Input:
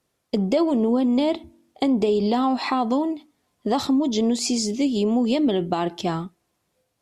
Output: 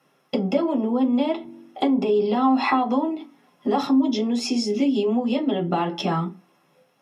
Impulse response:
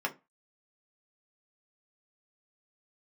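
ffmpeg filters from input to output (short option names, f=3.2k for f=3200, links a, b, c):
-filter_complex "[0:a]acompressor=threshold=-32dB:ratio=6[a];[1:a]atrim=start_sample=2205[b];[a][b]afir=irnorm=-1:irlink=0,volume=6.5dB"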